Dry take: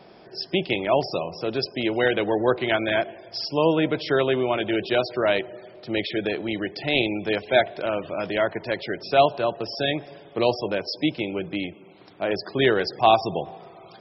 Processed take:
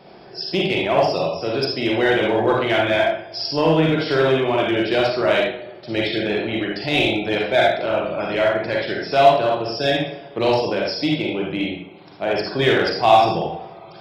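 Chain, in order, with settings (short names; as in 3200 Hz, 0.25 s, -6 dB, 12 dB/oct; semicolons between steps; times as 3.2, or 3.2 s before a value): reverb RT60 0.55 s, pre-delay 31 ms, DRR -2.5 dB; in parallel at -5.5 dB: hard clip -16.5 dBFS, distortion -8 dB; on the sum: gain -2.5 dB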